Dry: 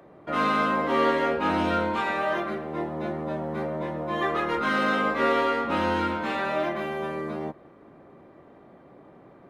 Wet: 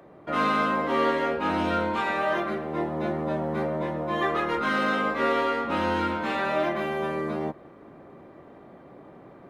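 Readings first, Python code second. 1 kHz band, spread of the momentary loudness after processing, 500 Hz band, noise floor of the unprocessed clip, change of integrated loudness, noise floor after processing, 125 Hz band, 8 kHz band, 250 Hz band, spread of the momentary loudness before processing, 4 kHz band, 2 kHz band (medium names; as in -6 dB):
-0.5 dB, 6 LU, 0.0 dB, -52 dBFS, 0.0 dB, -49 dBFS, +1.0 dB, no reading, 0.0 dB, 8 LU, -0.5 dB, -0.5 dB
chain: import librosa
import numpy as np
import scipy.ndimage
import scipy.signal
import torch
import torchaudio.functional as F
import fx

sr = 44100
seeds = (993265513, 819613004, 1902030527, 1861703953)

y = fx.rider(x, sr, range_db=3, speed_s=2.0)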